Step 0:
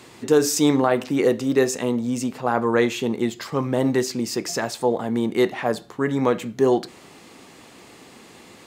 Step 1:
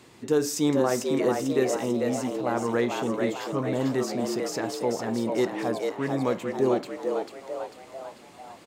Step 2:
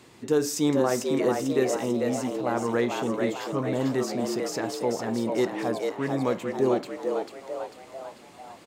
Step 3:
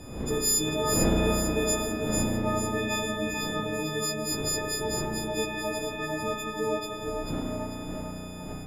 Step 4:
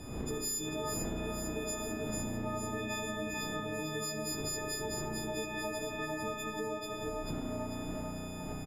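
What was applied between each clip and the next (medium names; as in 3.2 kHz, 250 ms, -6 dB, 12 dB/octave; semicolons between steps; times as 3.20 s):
bass shelf 410 Hz +3.5 dB; on a send: frequency-shifting echo 445 ms, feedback 51%, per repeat +88 Hz, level -4.5 dB; on the sum: trim -8 dB
no audible change
partials quantised in pitch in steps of 6 st; wind noise 310 Hz -32 dBFS; spring tank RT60 3.5 s, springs 33 ms, chirp 40 ms, DRR -2 dB; trim -6.5 dB
band-stop 530 Hz, Q 12; compression, threshold -32 dBFS, peak gain reduction 12 dB; delay 74 ms -14 dB; trim -2 dB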